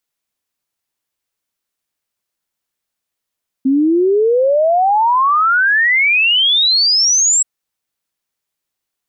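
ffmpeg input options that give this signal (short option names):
-f lavfi -i "aevalsrc='0.335*clip(min(t,3.78-t)/0.01,0,1)*sin(2*PI*260*3.78/log(7800/260)*(exp(log(7800/260)*t/3.78)-1))':d=3.78:s=44100"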